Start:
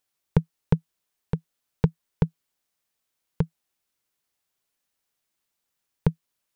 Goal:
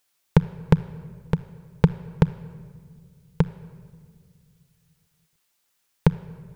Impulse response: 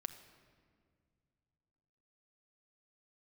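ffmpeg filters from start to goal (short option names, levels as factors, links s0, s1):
-filter_complex "[0:a]asplit=2[s0][s1];[1:a]atrim=start_sample=2205,lowshelf=f=500:g=-11[s2];[s1][s2]afir=irnorm=-1:irlink=0,volume=2.51[s3];[s0][s3]amix=inputs=2:normalize=0"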